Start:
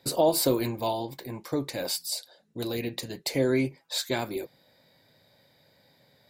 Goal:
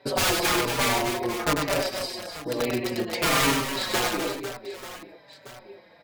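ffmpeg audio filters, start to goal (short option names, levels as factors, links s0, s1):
-filter_complex "[0:a]aemphasis=mode=reproduction:type=cd,asplit=2[s0][s1];[s1]asetrate=35002,aresample=44100,atempo=1.25992,volume=0.178[s2];[s0][s2]amix=inputs=2:normalize=0,bass=f=250:g=-10,treble=f=4000:g=-14,asplit=2[s3][s4];[s4]acompressor=threshold=0.0141:ratio=12,volume=1.12[s5];[s3][s5]amix=inputs=2:normalize=0,bandreject=f=50:t=h:w=6,bandreject=f=100:t=h:w=6,bandreject=f=150:t=h:w=6,bandreject=f=200:t=h:w=6,bandreject=f=250:t=h:w=6,aeval=exprs='(mod(12.6*val(0)+1,2)-1)/12.6':c=same,aecho=1:1:100|260|516|925.6|1581:0.631|0.398|0.251|0.158|0.1,asetrate=45938,aresample=44100,asplit=2[s6][s7];[s7]adelay=4.7,afreqshift=-1.1[s8];[s6][s8]amix=inputs=2:normalize=1,volume=2.24"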